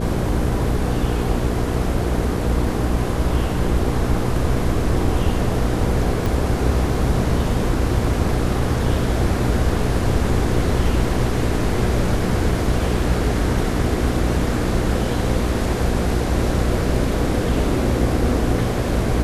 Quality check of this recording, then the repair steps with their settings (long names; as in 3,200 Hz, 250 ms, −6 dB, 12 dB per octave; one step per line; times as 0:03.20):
mains hum 60 Hz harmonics 8 −23 dBFS
0:06.26: click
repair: click removal
hum removal 60 Hz, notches 8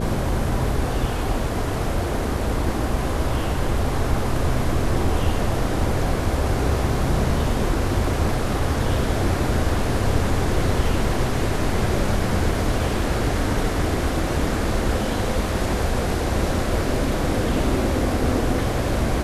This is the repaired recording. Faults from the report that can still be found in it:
none of them is left